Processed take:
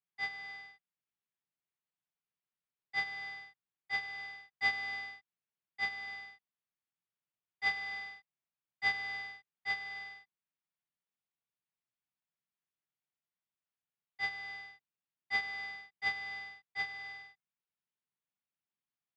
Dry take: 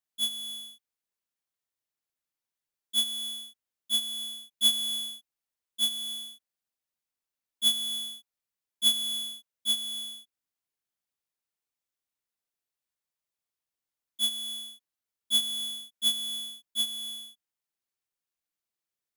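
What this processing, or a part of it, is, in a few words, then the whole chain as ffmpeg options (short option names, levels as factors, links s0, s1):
ring modulator pedal into a guitar cabinet: -af "aeval=exprs='val(0)*sgn(sin(2*PI*1400*n/s))':c=same,highpass=76,equalizer=f=130:t=q:w=4:g=7,equalizer=f=180:t=q:w=4:g=7,equalizer=f=290:t=q:w=4:g=-3,equalizer=f=520:t=q:w=4:g=-7,lowpass=f=3400:w=0.5412,lowpass=f=3400:w=1.3066,volume=0.631"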